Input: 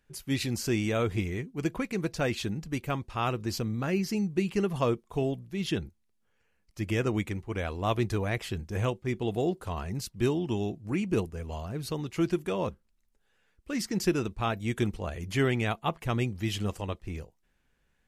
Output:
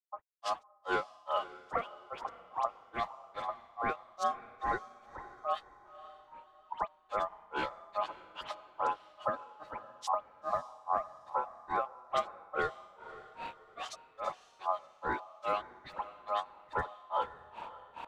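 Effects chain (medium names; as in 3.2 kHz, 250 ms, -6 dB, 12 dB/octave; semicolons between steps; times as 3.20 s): local Wiener filter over 9 samples; recorder AGC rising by 59 dB/s; low-pass 7.3 kHz 12 dB/octave; in parallel at +2 dB: compression 6:1, threshold -35 dBFS, peak gain reduction 16 dB; on the sum: formant-preserving pitch shift -3 st; crossover distortion -56 dBFS; phase dispersion highs, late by 84 ms, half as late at 1.3 kHz; ring modulator 930 Hz; granulator 223 ms, grains 2.4 per s, pitch spread up and down by 0 st; on a send: echo that smears into a reverb 531 ms, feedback 40%, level -15.5 dB; on the sum: trim -2 dB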